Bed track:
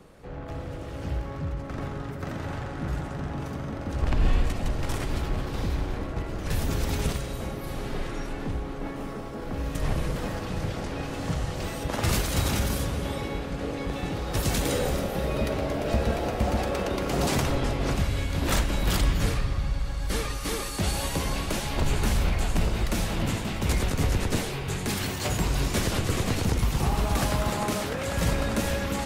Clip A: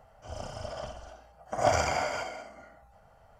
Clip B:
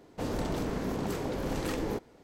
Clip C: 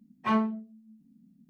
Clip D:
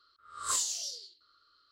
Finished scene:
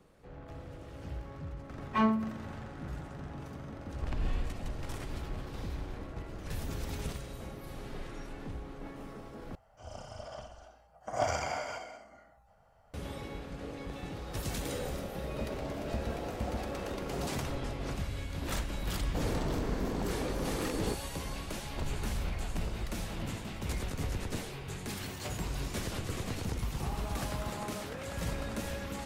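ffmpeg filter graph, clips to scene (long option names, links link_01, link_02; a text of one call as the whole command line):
ffmpeg -i bed.wav -i cue0.wav -i cue1.wav -i cue2.wav -filter_complex "[2:a]asplit=2[link_01][link_02];[0:a]volume=-10.5dB[link_03];[3:a]aecho=1:1:118|236|354|472:0.1|0.054|0.0292|0.0157[link_04];[link_01]acompressor=threshold=-37dB:ratio=6:attack=3.2:release=140:knee=1:detection=peak[link_05];[link_03]asplit=2[link_06][link_07];[link_06]atrim=end=9.554[link_08];[1:a]atrim=end=3.39,asetpts=PTS-STARTPTS,volume=-6dB[link_09];[link_07]atrim=start=12.936[link_10];[link_04]atrim=end=1.49,asetpts=PTS-STARTPTS,volume=-1.5dB,afade=type=in:duration=0.004:curve=hsin,afade=type=out:start_time=1.486:duration=0.004:curve=hsin,adelay=1690[link_11];[link_05]atrim=end=2.23,asetpts=PTS-STARTPTS,volume=-4.5dB,afade=type=in:duration=0.004:curve=hsin,afade=type=out:start_time=2.226:duration=0.004:curve=hsin,adelay=15200[link_12];[link_02]atrim=end=2.23,asetpts=PTS-STARTPTS,volume=-2dB,afade=type=in:duration=0.004:curve=hsin,afade=type=out:start_time=2.226:duration=0.004:curve=hsin,adelay=18960[link_13];[link_08][link_09]acrossfade=duration=0.004:curve1=hsin:curve2=hsin[link_14];[link_14][link_10]acrossfade=duration=0.004:curve1=hsin:curve2=hsin[link_15];[link_15][link_11][link_12][link_13]amix=inputs=4:normalize=0" out.wav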